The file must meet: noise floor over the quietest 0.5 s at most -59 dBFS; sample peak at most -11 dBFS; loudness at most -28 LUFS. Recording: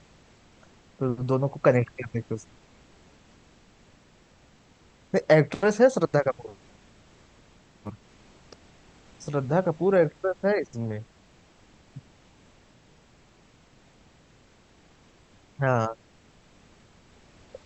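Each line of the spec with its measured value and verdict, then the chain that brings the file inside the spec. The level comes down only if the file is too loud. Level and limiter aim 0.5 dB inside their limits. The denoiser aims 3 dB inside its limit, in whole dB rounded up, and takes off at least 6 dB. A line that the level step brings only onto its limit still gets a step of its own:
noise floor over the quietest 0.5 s -58 dBFS: fail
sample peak -6.0 dBFS: fail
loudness -25.0 LUFS: fail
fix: trim -3.5 dB; peak limiter -11.5 dBFS

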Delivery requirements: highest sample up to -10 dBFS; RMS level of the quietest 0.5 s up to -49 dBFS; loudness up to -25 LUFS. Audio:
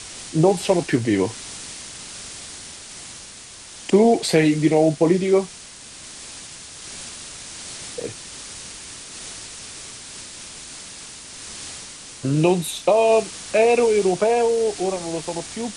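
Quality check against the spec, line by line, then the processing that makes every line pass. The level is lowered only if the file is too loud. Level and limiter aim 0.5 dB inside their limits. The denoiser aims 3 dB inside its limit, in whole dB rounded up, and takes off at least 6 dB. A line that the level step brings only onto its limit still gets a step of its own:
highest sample -4.5 dBFS: fail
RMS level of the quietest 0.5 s -41 dBFS: fail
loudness -20.0 LUFS: fail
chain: noise reduction 6 dB, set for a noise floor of -41 dBFS; trim -5.5 dB; peak limiter -10.5 dBFS

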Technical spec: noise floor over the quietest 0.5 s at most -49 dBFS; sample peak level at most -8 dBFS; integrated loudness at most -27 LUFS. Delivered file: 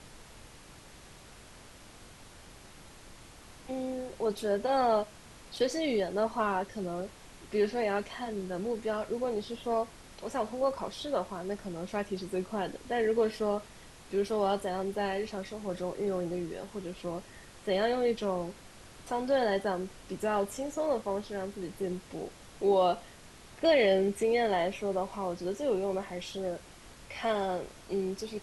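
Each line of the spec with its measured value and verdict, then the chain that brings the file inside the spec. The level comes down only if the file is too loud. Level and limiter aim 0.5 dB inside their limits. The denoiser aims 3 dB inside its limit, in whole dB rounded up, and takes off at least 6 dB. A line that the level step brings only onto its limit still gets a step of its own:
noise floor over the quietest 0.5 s -52 dBFS: pass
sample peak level -14.5 dBFS: pass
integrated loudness -32.0 LUFS: pass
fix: none needed

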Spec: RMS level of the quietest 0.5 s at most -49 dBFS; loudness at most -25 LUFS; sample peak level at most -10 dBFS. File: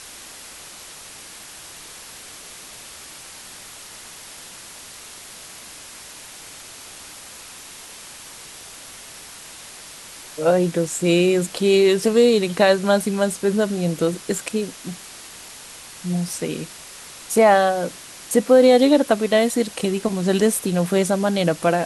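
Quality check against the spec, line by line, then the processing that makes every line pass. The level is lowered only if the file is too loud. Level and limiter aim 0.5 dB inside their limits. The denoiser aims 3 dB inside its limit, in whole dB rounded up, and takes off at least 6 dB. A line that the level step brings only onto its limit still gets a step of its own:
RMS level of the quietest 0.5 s -40 dBFS: fail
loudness -19.0 LUFS: fail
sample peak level -4.5 dBFS: fail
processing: noise reduction 6 dB, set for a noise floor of -40 dBFS; trim -6.5 dB

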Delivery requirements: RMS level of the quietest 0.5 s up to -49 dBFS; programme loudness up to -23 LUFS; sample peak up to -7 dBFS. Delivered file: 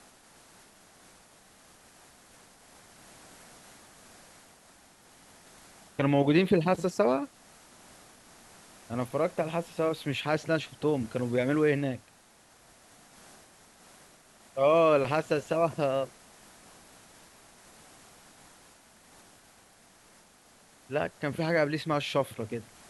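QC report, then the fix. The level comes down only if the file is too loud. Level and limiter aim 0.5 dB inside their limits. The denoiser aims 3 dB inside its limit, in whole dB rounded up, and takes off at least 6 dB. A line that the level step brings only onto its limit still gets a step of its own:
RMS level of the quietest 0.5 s -59 dBFS: pass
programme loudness -28.5 LUFS: pass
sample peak -11.5 dBFS: pass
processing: none needed

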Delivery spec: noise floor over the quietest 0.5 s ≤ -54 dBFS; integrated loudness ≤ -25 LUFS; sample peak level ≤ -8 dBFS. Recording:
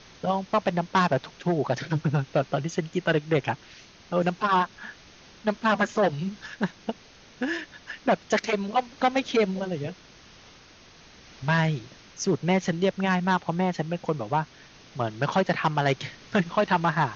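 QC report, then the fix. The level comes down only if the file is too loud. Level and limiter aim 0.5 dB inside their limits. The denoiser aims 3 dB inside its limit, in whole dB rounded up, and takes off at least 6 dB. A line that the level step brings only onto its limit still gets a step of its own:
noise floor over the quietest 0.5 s -52 dBFS: fail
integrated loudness -26.5 LUFS: pass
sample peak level -10.0 dBFS: pass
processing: noise reduction 6 dB, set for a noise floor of -52 dBFS

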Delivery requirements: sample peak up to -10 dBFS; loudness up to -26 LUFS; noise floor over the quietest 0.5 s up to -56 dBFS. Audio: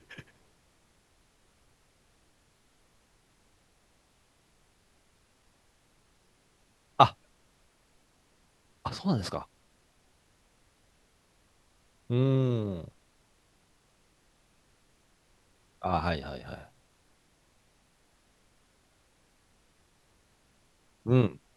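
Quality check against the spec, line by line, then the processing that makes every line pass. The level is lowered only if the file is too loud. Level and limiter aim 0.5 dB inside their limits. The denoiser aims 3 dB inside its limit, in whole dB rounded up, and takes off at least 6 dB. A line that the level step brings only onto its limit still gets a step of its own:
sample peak -4.5 dBFS: fail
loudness -29.5 LUFS: pass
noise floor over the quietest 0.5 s -67 dBFS: pass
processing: peak limiter -10.5 dBFS

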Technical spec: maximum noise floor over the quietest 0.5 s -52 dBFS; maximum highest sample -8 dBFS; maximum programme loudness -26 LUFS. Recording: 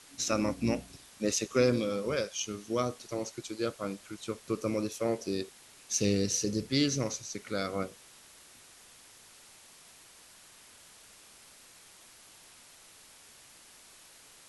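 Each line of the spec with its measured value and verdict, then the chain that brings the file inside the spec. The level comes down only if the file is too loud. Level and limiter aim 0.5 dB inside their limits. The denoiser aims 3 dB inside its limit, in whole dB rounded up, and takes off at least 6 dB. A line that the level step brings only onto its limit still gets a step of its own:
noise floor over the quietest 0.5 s -56 dBFS: pass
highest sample -12.5 dBFS: pass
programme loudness -32.0 LUFS: pass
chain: none needed

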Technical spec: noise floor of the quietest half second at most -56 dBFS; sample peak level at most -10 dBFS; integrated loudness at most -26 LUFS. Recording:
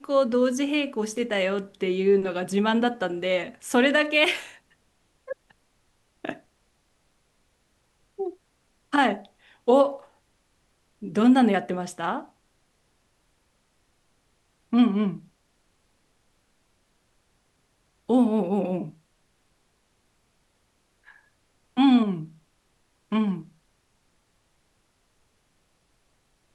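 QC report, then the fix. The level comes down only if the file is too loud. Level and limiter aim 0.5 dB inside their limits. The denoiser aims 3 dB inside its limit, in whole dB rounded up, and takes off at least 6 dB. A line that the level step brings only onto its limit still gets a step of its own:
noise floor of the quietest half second -69 dBFS: pass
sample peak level -7.0 dBFS: fail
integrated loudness -24.0 LUFS: fail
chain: trim -2.5 dB; peak limiter -10.5 dBFS

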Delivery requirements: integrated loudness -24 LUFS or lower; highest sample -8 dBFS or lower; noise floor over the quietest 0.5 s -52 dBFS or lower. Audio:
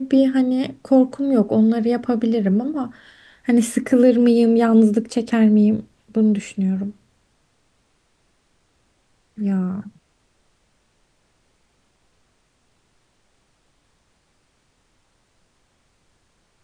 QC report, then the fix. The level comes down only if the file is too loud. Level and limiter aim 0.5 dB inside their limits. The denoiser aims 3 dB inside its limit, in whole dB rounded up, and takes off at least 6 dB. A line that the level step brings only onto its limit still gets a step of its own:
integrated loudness -18.5 LUFS: fail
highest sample -4.5 dBFS: fail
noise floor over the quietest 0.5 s -64 dBFS: pass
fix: trim -6 dB

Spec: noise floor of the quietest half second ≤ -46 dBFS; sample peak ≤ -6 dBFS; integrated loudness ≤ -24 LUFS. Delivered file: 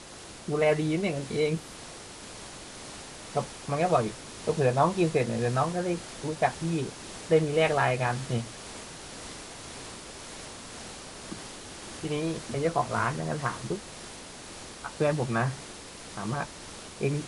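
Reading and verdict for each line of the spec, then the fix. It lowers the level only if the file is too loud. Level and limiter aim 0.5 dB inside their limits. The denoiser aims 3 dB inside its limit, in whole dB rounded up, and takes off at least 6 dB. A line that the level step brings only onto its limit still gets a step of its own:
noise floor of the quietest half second -44 dBFS: fail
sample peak -9.5 dBFS: pass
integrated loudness -29.0 LUFS: pass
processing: noise reduction 6 dB, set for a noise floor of -44 dBFS

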